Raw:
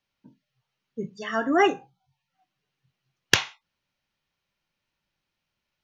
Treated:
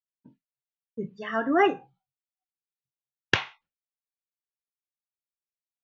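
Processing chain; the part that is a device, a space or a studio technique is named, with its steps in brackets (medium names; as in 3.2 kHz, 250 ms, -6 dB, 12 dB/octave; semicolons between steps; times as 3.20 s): hearing-loss simulation (low-pass 2.8 kHz 12 dB/octave; expander -52 dBFS); trim -1 dB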